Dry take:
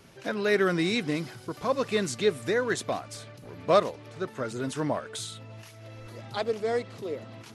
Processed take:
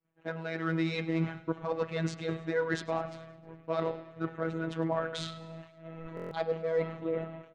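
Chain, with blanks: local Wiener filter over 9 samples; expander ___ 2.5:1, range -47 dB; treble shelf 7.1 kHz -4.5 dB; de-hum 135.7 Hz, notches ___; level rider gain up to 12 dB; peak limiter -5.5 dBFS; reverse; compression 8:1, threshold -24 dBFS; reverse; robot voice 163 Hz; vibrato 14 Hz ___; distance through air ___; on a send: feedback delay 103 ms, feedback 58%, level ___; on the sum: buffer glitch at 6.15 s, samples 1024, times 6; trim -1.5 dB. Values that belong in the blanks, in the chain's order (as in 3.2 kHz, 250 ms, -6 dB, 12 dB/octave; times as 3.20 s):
-37 dBFS, 38, 8.1 cents, 130 m, -19 dB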